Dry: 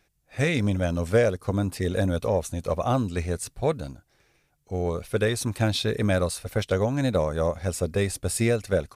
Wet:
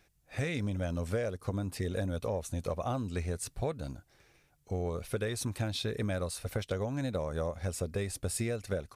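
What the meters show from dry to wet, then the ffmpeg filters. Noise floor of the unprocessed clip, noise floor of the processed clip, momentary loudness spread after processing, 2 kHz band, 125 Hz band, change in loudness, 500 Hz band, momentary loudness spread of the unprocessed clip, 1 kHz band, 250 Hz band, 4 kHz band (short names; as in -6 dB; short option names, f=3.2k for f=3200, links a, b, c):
-69 dBFS, -69 dBFS, 3 LU, -10.0 dB, -8.0 dB, -9.0 dB, -10.0 dB, 6 LU, -9.5 dB, -9.5 dB, -8.5 dB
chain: -af "equalizer=f=83:t=o:w=0.77:g=2,acompressor=threshold=-32dB:ratio=4"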